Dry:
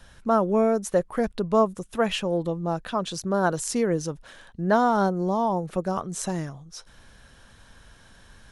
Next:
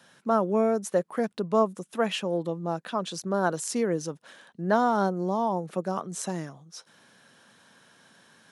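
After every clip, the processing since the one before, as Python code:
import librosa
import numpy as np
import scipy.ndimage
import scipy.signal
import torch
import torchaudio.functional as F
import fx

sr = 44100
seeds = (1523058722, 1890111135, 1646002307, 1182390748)

y = scipy.signal.sosfilt(scipy.signal.butter(4, 160.0, 'highpass', fs=sr, output='sos'), x)
y = y * 10.0 ** (-2.5 / 20.0)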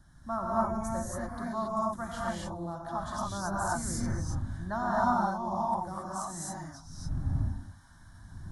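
y = fx.dmg_wind(x, sr, seeds[0], corner_hz=130.0, level_db=-37.0)
y = fx.fixed_phaser(y, sr, hz=1100.0, stages=4)
y = fx.rev_gated(y, sr, seeds[1], gate_ms=300, shape='rising', drr_db=-6.5)
y = y * 10.0 ** (-8.0 / 20.0)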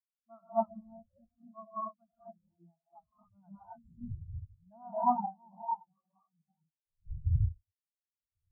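y = fx.spectral_expand(x, sr, expansion=4.0)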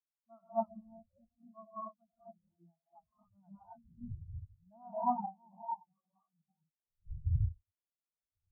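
y = scipy.signal.sosfilt(scipy.signal.butter(2, 1100.0, 'lowpass', fs=sr, output='sos'), x)
y = y * 10.0 ** (-3.0 / 20.0)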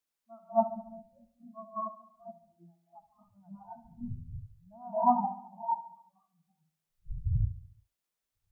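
y = fx.peak_eq(x, sr, hz=78.0, db=-9.5, octaves=0.65)
y = fx.echo_feedback(y, sr, ms=70, feedback_pct=54, wet_db=-14)
y = y * 10.0 ** (7.5 / 20.0)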